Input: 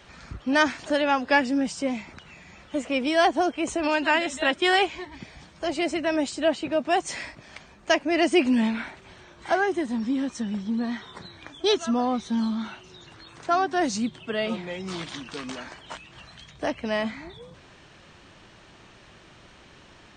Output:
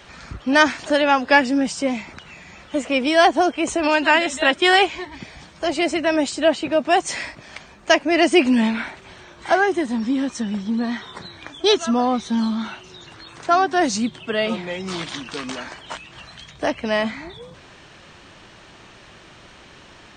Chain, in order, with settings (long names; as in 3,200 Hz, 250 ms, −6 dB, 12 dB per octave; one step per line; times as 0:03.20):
low-shelf EQ 340 Hz −3 dB
level +6.5 dB